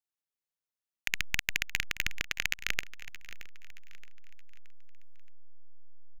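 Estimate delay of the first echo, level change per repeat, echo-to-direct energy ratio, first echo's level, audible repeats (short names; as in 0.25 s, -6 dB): 0.623 s, -7.5 dB, -15.5 dB, -16.5 dB, 3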